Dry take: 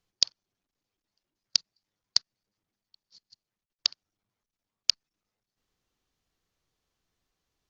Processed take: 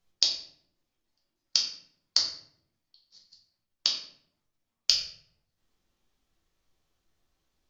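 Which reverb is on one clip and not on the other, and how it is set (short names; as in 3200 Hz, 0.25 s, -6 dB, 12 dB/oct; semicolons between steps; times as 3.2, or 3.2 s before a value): shoebox room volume 110 m³, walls mixed, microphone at 1.1 m; gain -1.5 dB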